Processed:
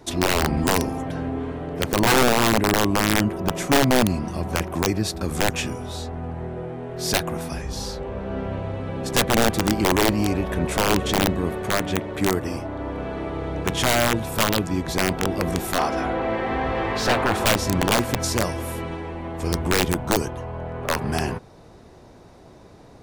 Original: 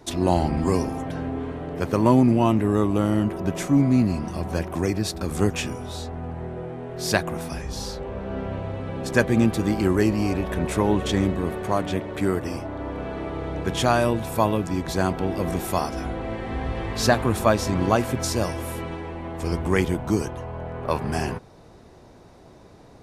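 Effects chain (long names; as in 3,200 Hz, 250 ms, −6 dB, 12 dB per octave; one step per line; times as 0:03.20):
wrap-around overflow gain 12.5 dB
0:15.78–0:17.45: mid-hump overdrive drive 17 dB, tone 1,600 Hz, clips at −12.5 dBFS
level +1.5 dB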